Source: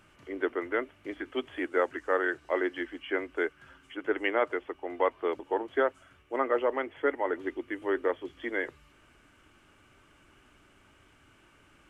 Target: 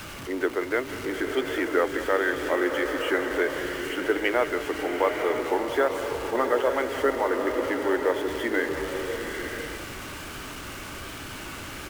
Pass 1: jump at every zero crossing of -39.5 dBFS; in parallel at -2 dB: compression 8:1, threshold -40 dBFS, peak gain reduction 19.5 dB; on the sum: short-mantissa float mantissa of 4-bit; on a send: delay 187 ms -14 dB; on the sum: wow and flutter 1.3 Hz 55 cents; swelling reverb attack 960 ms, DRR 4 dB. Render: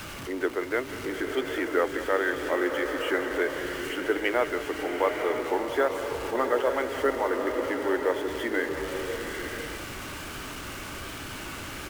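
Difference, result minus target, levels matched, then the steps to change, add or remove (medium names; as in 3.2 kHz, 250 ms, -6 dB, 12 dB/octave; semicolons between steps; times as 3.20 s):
compression: peak gain reduction +9 dB
change: compression 8:1, threshold -29.5 dBFS, peak gain reduction 10 dB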